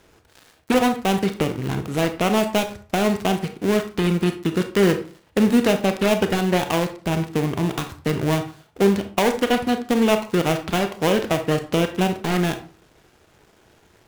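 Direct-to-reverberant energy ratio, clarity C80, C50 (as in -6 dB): 7.0 dB, 16.0 dB, 11.0 dB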